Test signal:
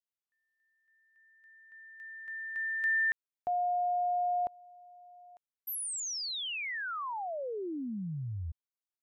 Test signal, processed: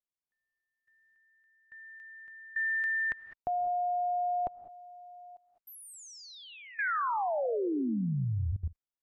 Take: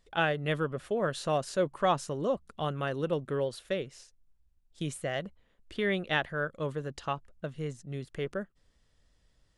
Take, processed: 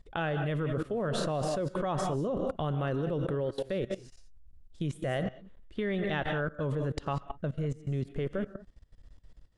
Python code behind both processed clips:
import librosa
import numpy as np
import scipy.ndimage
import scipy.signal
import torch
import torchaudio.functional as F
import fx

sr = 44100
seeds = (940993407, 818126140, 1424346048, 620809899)

y = fx.tilt_eq(x, sr, slope=-2.0)
y = fx.rev_gated(y, sr, seeds[0], gate_ms=220, shape='rising', drr_db=10.0)
y = fx.level_steps(y, sr, step_db=19)
y = y * 10.0 ** (7.5 / 20.0)